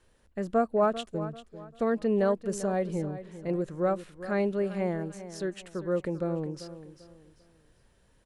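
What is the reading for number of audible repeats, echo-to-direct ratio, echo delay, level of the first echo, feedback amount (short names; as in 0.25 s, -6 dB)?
3, -13.0 dB, 0.393 s, -13.5 dB, 32%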